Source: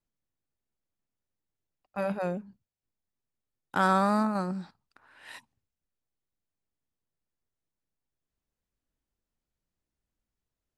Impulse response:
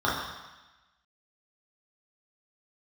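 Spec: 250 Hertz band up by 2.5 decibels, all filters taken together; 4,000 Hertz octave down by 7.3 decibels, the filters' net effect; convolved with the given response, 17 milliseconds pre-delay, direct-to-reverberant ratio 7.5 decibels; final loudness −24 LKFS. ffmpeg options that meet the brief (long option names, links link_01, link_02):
-filter_complex "[0:a]equalizer=frequency=250:width_type=o:gain=3.5,equalizer=frequency=4000:width_type=o:gain=-9,asplit=2[link_01][link_02];[1:a]atrim=start_sample=2205,adelay=17[link_03];[link_02][link_03]afir=irnorm=-1:irlink=0,volume=-23dB[link_04];[link_01][link_04]amix=inputs=2:normalize=0,volume=3.5dB"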